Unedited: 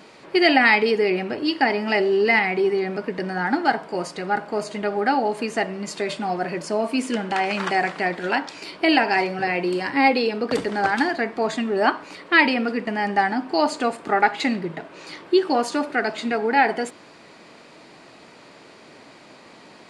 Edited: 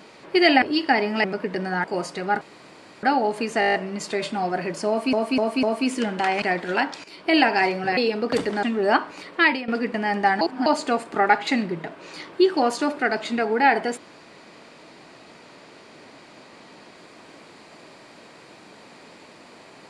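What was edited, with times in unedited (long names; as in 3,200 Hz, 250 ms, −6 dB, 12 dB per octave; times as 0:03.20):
0:00.62–0:01.34: remove
0:01.96–0:02.88: remove
0:03.48–0:03.85: remove
0:04.42–0:05.04: fill with room tone
0:05.61: stutter 0.02 s, 8 plays
0:06.75–0:07.00: repeat, 4 plays
0:07.54–0:07.97: remove
0:08.59–0:08.91: fade in, from −12.5 dB
0:09.52–0:10.16: remove
0:10.82–0:11.56: remove
0:12.28–0:12.61: fade out, to −15.5 dB
0:13.34–0:13.59: reverse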